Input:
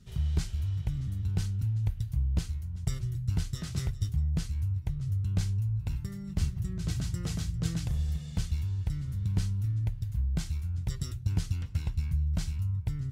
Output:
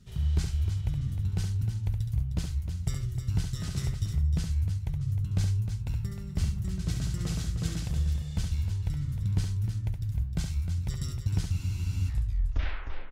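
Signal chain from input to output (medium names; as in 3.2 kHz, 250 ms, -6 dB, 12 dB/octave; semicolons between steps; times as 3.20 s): tape stop on the ending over 1.24 s; multi-tap echo 69/308 ms -6/-9 dB; spectral freeze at 11.54 s, 0.54 s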